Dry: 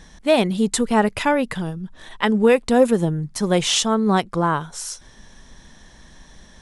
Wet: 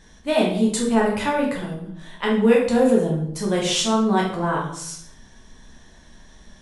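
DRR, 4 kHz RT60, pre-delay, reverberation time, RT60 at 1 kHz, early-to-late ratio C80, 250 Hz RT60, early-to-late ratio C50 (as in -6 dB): -3.0 dB, 0.50 s, 8 ms, 0.70 s, 0.65 s, 8.5 dB, 0.90 s, 4.5 dB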